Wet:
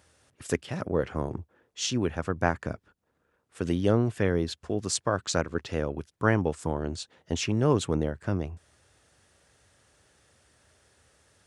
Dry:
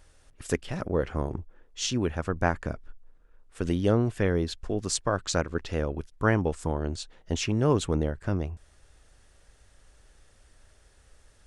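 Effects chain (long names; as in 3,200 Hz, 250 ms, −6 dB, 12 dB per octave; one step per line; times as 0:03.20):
high-pass filter 83 Hz 24 dB per octave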